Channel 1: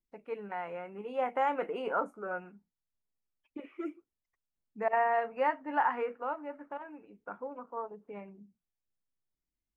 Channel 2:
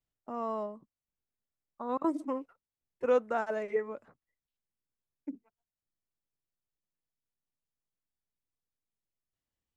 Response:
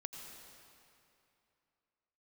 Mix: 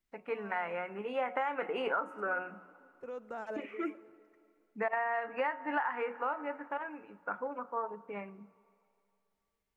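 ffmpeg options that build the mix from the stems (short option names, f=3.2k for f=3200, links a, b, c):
-filter_complex "[0:a]equalizer=f=1.8k:t=o:w=1.7:g=8.5,bandreject=f=182.8:t=h:w=4,bandreject=f=365.6:t=h:w=4,bandreject=f=548.4:t=h:w=4,bandreject=f=731.2:t=h:w=4,bandreject=f=914:t=h:w=4,bandreject=f=1.0968k:t=h:w=4,bandreject=f=1.2796k:t=h:w=4,bandreject=f=1.4624k:t=h:w=4,bandreject=f=1.6452k:t=h:w=4,volume=0.5dB,asplit=3[a][b][c];[b]volume=-16dB[d];[1:a]alimiter=level_in=2.5dB:limit=-24dB:level=0:latency=1:release=62,volume=-2.5dB,volume=-5dB,asplit=2[e][f];[f]volume=-14.5dB[g];[c]apad=whole_len=430501[h];[e][h]sidechaincompress=threshold=-51dB:ratio=4:attack=16:release=708[i];[2:a]atrim=start_sample=2205[j];[d][g]amix=inputs=2:normalize=0[k];[k][j]afir=irnorm=-1:irlink=0[l];[a][i][l]amix=inputs=3:normalize=0,acompressor=threshold=-29dB:ratio=12"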